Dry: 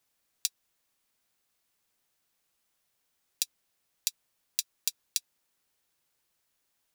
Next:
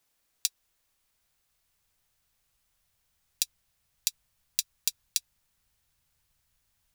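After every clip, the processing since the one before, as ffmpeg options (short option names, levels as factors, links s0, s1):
-af "asubboost=boost=11.5:cutoff=100,volume=1.26"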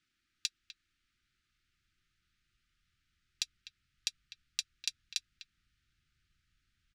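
-filter_complex "[0:a]lowpass=3900,asplit=2[s0][s1];[s1]adelay=250,highpass=300,lowpass=3400,asoftclip=type=hard:threshold=0.0891,volume=0.282[s2];[s0][s2]amix=inputs=2:normalize=0,afftfilt=real='re*(1-between(b*sr/4096,380,1200))':imag='im*(1-between(b*sr/4096,380,1200))':win_size=4096:overlap=0.75,volume=1.12"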